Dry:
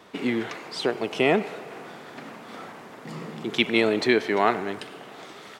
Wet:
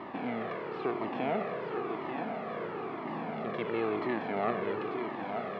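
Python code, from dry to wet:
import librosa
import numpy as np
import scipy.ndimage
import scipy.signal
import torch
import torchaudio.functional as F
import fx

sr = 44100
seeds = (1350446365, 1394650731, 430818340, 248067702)

p1 = fx.bin_compress(x, sr, power=0.4)
p2 = scipy.signal.sosfilt(scipy.signal.butter(2, 1400.0, 'lowpass', fs=sr, output='sos'), p1)
p3 = p2 + fx.echo_single(p2, sr, ms=889, db=-6.5, dry=0)
p4 = fx.comb_cascade(p3, sr, direction='falling', hz=0.99)
y = p4 * 10.0 ** (-8.5 / 20.0)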